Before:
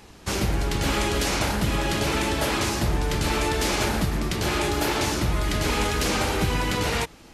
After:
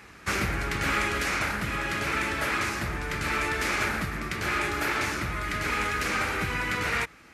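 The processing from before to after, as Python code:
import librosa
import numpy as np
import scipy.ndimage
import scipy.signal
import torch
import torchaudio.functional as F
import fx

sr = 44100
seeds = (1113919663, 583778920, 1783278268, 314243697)

y = scipy.signal.sosfilt(scipy.signal.butter(2, 50.0, 'highpass', fs=sr, output='sos'), x)
y = fx.band_shelf(y, sr, hz=1700.0, db=10.5, octaves=1.3)
y = fx.rider(y, sr, range_db=10, speed_s=2.0)
y = y * librosa.db_to_amplitude(-8.0)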